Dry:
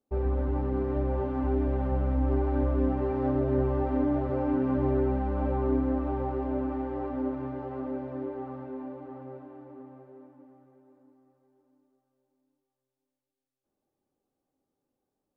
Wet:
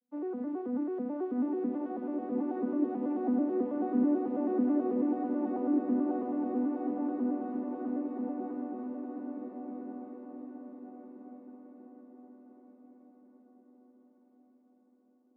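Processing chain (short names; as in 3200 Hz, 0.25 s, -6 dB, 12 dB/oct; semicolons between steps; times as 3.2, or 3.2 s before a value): arpeggiated vocoder minor triad, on B3, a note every 0.109 s; diffused feedback echo 1.404 s, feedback 41%, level -4.5 dB; gain -2 dB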